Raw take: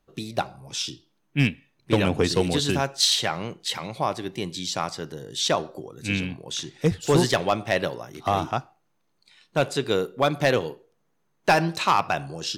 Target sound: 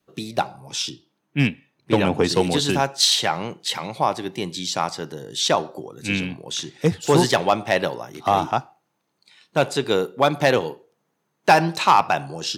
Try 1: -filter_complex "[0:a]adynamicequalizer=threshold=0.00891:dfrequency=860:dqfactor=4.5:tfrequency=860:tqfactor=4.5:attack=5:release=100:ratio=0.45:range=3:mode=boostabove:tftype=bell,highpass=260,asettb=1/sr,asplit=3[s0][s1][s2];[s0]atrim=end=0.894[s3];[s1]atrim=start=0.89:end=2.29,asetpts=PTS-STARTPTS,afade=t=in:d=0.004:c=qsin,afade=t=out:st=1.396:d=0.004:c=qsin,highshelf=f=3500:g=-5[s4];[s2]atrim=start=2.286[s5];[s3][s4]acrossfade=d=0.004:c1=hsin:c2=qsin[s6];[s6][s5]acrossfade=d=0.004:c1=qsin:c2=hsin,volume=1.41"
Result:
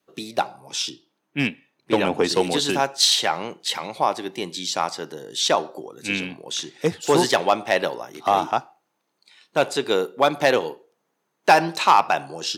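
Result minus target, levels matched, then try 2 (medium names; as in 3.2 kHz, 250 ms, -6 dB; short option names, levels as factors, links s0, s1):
125 Hz band -8.0 dB
-filter_complex "[0:a]adynamicequalizer=threshold=0.00891:dfrequency=860:dqfactor=4.5:tfrequency=860:tqfactor=4.5:attack=5:release=100:ratio=0.45:range=3:mode=boostabove:tftype=bell,highpass=120,asettb=1/sr,asplit=3[s0][s1][s2];[s0]atrim=end=0.894[s3];[s1]atrim=start=0.89:end=2.29,asetpts=PTS-STARTPTS,afade=t=in:d=0.004:c=qsin,afade=t=out:st=1.396:d=0.004:c=qsin,highshelf=f=3500:g=-5[s4];[s2]atrim=start=2.286[s5];[s3][s4]acrossfade=d=0.004:c1=hsin:c2=qsin[s6];[s6][s5]acrossfade=d=0.004:c1=qsin:c2=hsin,volume=1.41"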